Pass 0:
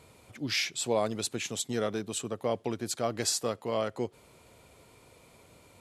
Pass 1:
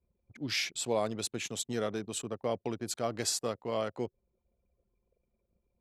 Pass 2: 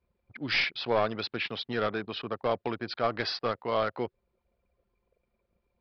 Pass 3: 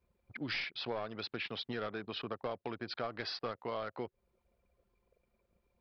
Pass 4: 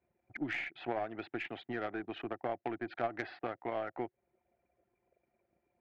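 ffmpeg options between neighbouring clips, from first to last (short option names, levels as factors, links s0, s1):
-af "anlmdn=0.0398,volume=0.75"
-af "equalizer=f=1500:t=o:w=2.3:g=11.5,aresample=11025,aeval=exprs='clip(val(0),-1,0.0631)':c=same,aresample=44100"
-af "acompressor=threshold=0.0141:ratio=4"
-af "highpass=120,equalizer=f=200:t=q:w=4:g=-6,equalizer=f=330:t=q:w=4:g=8,equalizer=f=470:t=q:w=4:g=-7,equalizer=f=730:t=q:w=4:g=9,equalizer=f=1100:t=q:w=4:g=-8,equalizer=f=1900:t=q:w=4:g=4,lowpass=f=2500:w=0.5412,lowpass=f=2500:w=1.3066,aeval=exprs='0.0708*(cos(1*acos(clip(val(0)/0.0708,-1,1)))-cos(1*PI/2))+0.00891*(cos(3*acos(clip(val(0)/0.0708,-1,1)))-cos(3*PI/2))+0.001*(cos(6*acos(clip(val(0)/0.0708,-1,1)))-cos(6*PI/2))':c=same,volume=1.58"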